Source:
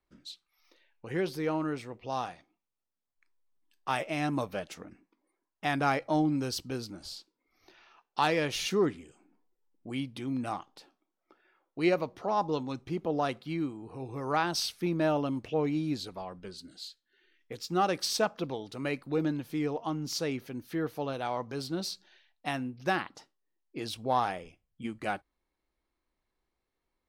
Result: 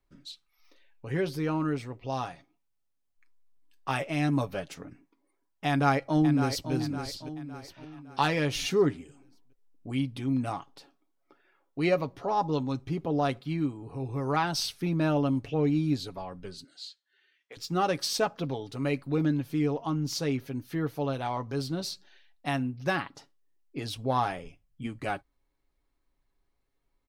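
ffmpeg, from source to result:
ffmpeg -i in.wav -filter_complex "[0:a]asplit=2[link_01][link_02];[link_02]afade=type=in:start_time=5.68:duration=0.01,afade=type=out:start_time=6.72:duration=0.01,aecho=0:1:560|1120|1680|2240|2800:0.354813|0.159666|0.0718497|0.0323324|0.0145496[link_03];[link_01][link_03]amix=inputs=2:normalize=0,asettb=1/sr,asplit=3[link_04][link_05][link_06];[link_04]atrim=end=16.644[link_07];[link_05]atrim=start=16.64:end=17.57,asetpts=PTS-STARTPTS,afade=type=in:duration=0.004:curve=qsin,afade=type=out:start_time=0.926:duration=0.004:curve=qsin,highpass=680,lowpass=7900[link_08];[link_06]atrim=start=17.566[link_09];[link_07][link_08]acrossfade=duration=0.004:curve1=hsin:curve2=qsin[link_10];[link_10][link_09]acrossfade=duration=0.004:curve1=qsin:curve2=hsin,lowshelf=frequency=140:gain=9.5,aecho=1:1:7.2:0.47" out.wav

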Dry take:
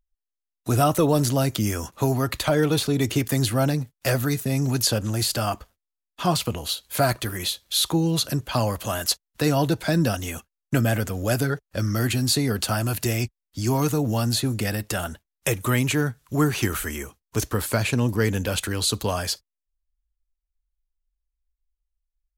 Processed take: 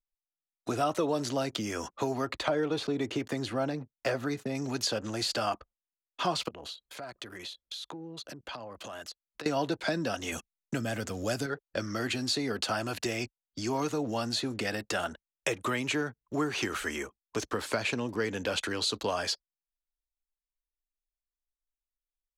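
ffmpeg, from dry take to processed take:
ffmpeg -i in.wav -filter_complex "[0:a]asettb=1/sr,asplit=3[link_01][link_02][link_03];[link_01]atrim=end=2.254[link_04];[link_02]atrim=start=2.25:end=4.55,asetpts=PTS-STARTPTS,afade=type=in:duration=0.004:curve=qsin,afade=type=out:start_time=2.296:duration=0.004:curve=qsin,highshelf=frequency=2200:gain=-7.5[link_05];[link_03]atrim=start=4.546[link_06];[link_04][link_05]acrossfade=duration=0.004:curve1=hsin:curve2=qsin[link_07];[link_07][link_06]acrossfade=duration=0.004:curve1=qsin:curve2=hsin,asettb=1/sr,asplit=3[link_08][link_09][link_10];[link_08]atrim=end=6.484[link_11];[link_09]atrim=start=6.48:end=9.46,asetpts=PTS-STARTPTS,afade=type=in:duration=0.004:curve=qsin,afade=type=out:start_time=2.976:duration=0.004:curve=qsin,acompressor=threshold=-35dB:ratio=16:attack=3.2:release=140:knee=1:detection=peak[link_12];[link_10]atrim=start=9.456[link_13];[link_11][link_12]acrossfade=duration=0.004:curve1=hsin:curve2=qsin[link_14];[link_14][link_13]acrossfade=duration=0.004:curve1=qsin:curve2=hsin,asettb=1/sr,asplit=3[link_15][link_16][link_17];[link_15]atrim=end=10.324[link_18];[link_16]atrim=start=10.32:end=11.46,asetpts=PTS-STARTPTS,afade=type=in:duration=0.004:curve=qsin,afade=type=out:start_time=1.136:duration=0.004:curve=qsin,bass=frequency=250:gain=7,treble=frequency=4000:gain=8[link_19];[link_17]atrim=start=11.456[link_20];[link_18][link_19]acrossfade=duration=0.004:curve1=hsin:curve2=qsin[link_21];[link_21][link_20]acrossfade=duration=0.004:curve1=qsin:curve2=hsin,anlmdn=0.158,acompressor=threshold=-25dB:ratio=3,acrossover=split=240 7000:gain=0.178 1 0.0891[link_22][link_23][link_24];[link_22][link_23][link_24]amix=inputs=3:normalize=0" out.wav

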